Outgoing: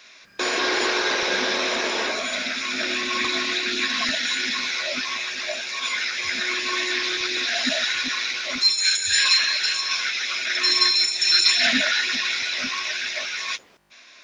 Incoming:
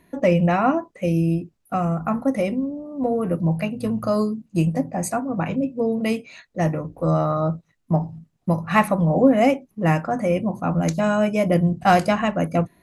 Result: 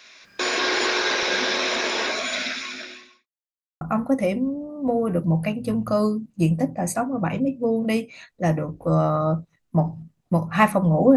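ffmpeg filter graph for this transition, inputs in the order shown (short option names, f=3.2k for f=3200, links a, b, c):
-filter_complex "[0:a]apad=whole_dur=11.16,atrim=end=11.16,asplit=2[a][b];[a]atrim=end=3.27,asetpts=PTS-STARTPTS,afade=t=out:st=2.45:d=0.82:c=qua[c];[b]atrim=start=3.27:end=3.81,asetpts=PTS-STARTPTS,volume=0[d];[1:a]atrim=start=1.97:end=9.32,asetpts=PTS-STARTPTS,afade=t=in:d=0.004:c=hsin[e];[c][d][e]concat=n=3:v=0:a=1"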